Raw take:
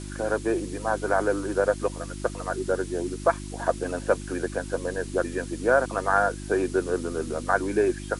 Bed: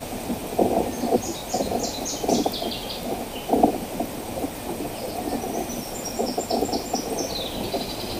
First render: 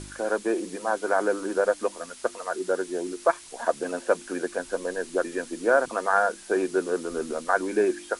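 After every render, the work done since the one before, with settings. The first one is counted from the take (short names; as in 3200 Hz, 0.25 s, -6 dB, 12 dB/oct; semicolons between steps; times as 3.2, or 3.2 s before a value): de-hum 50 Hz, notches 7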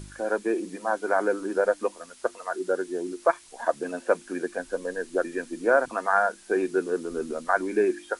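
noise print and reduce 6 dB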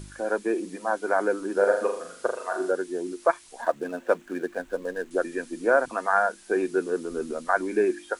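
1.53–2.71 flutter echo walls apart 6.9 m, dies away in 0.52 s; 3.62–5.11 median filter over 9 samples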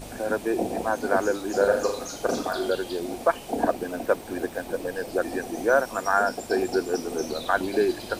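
add bed -8 dB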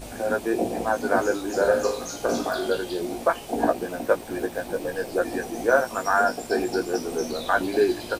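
doubler 17 ms -4.5 dB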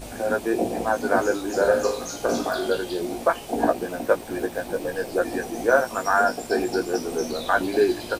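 gain +1 dB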